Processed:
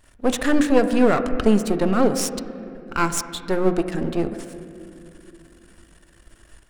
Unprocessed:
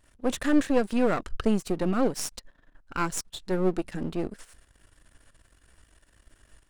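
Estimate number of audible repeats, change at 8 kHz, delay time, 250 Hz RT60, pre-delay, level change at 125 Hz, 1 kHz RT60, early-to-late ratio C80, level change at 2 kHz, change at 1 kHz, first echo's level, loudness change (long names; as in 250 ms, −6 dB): no echo audible, +7.0 dB, no echo audible, 3.9 s, 3 ms, +5.5 dB, 2.2 s, 11.0 dB, +7.5 dB, +7.5 dB, no echo audible, +6.5 dB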